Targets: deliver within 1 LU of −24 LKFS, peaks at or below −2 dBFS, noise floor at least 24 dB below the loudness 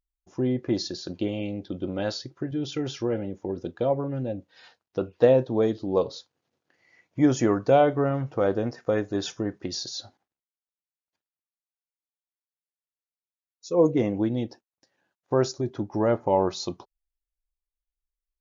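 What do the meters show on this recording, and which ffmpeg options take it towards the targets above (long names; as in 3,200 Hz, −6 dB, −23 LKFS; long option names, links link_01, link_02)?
integrated loudness −26.0 LKFS; sample peak −6.5 dBFS; target loudness −24.0 LKFS
→ -af "volume=2dB"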